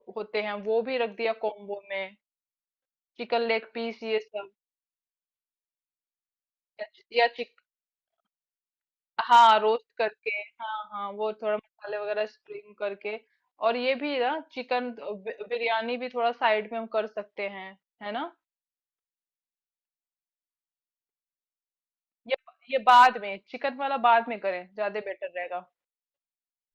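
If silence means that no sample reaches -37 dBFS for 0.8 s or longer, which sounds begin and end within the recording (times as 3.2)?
3.19–4.44
6.79–7.43
9.19–18.28
22.28–25.6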